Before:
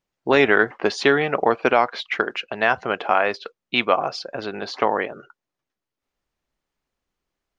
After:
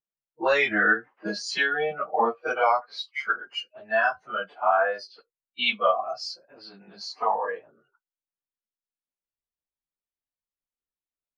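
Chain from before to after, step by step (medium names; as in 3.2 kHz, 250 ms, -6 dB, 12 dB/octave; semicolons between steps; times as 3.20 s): spectral noise reduction 19 dB; plain phase-vocoder stretch 1.5×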